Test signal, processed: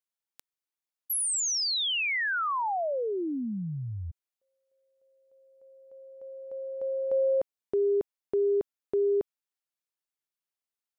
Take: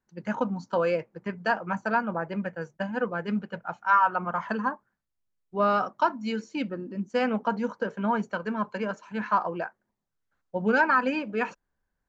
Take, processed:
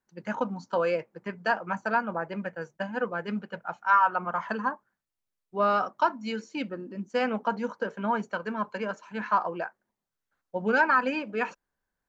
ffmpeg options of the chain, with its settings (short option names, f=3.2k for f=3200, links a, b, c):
-af "lowshelf=f=200:g=-8"